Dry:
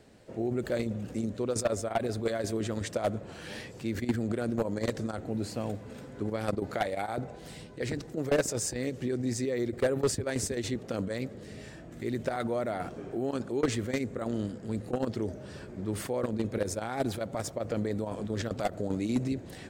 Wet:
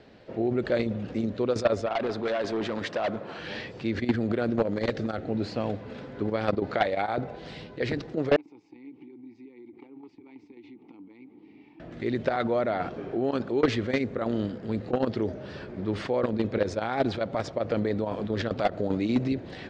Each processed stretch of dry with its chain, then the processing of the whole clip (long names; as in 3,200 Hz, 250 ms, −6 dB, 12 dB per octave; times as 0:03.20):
0:01.86–0:03.39: high-pass filter 160 Hz + parametric band 1,100 Hz +5 dB 1.2 octaves + hard clipping −29.5 dBFS
0:04.62–0:05.29: parametric band 980 Hz −13 dB 0.21 octaves + hard clipping −24.5 dBFS
0:08.36–0:11.80: downward compressor 12 to 1, threshold −36 dBFS + formant filter u
whole clip: low-pass filter 4,500 Hz 24 dB per octave; low-shelf EQ 190 Hz −5.5 dB; level +6 dB